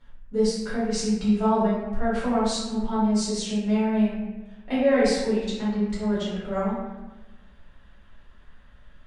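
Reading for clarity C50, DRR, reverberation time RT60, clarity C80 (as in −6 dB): −1.0 dB, −11.0 dB, 1.1 s, 2.5 dB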